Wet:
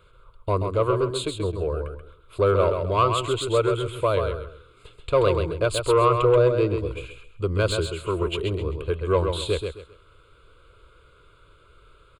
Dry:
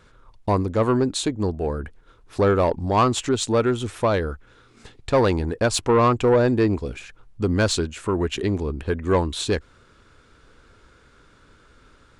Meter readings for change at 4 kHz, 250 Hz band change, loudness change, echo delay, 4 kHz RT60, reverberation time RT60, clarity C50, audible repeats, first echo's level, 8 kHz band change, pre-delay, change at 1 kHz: -2.0 dB, -7.0 dB, -1.5 dB, 0.132 s, none, none, none, 3, -6.0 dB, -7.0 dB, none, -1.5 dB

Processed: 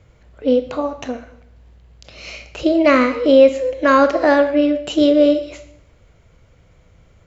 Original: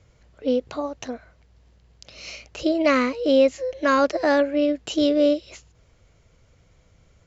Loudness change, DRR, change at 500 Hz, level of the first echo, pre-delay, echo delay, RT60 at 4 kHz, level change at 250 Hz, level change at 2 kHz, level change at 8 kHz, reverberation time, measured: +6.5 dB, 9.0 dB, +6.5 dB, none, 18 ms, none, 0.70 s, +6.0 dB, +5.5 dB, n/a, 0.75 s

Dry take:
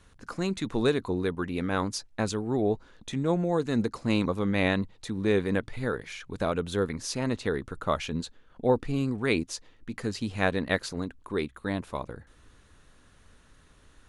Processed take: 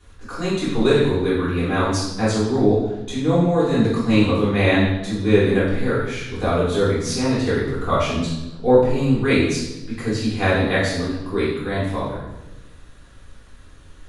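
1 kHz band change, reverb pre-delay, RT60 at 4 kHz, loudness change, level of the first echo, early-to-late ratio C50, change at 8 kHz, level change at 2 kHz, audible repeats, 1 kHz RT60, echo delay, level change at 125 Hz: +8.5 dB, 3 ms, 0.95 s, +9.5 dB, none, 1.0 dB, +7.5 dB, +8.5 dB, none, 0.90 s, none, +11.0 dB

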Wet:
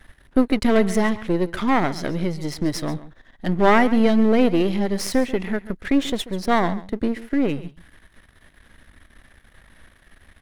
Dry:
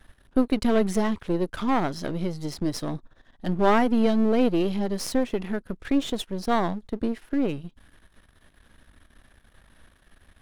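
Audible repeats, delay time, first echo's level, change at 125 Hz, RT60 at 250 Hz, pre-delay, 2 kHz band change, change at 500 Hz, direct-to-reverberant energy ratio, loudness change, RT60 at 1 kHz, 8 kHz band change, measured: 1, 0.137 s, -16.5 dB, +4.0 dB, none, none, +8.0 dB, +4.0 dB, none, +4.5 dB, none, +4.0 dB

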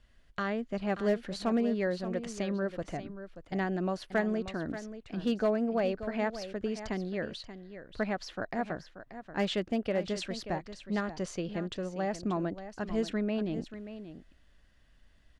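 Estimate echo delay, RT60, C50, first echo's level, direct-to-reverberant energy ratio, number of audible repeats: 0.582 s, none, none, -12.0 dB, none, 1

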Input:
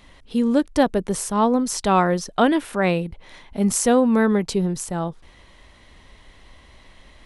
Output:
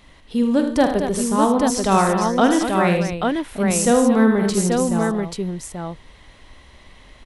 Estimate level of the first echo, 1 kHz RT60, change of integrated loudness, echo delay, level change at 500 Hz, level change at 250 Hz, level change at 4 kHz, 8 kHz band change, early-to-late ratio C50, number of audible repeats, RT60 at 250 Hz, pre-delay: -9.5 dB, none, +2.0 dB, 46 ms, +2.5 dB, +3.0 dB, +2.5 dB, +2.5 dB, none, 5, none, none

